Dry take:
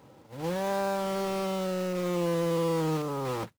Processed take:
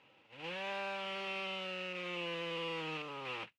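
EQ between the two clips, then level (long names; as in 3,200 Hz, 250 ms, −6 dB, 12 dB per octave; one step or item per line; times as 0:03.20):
resonant band-pass 2,700 Hz, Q 5.6
spectral tilt −3 dB per octave
+12.5 dB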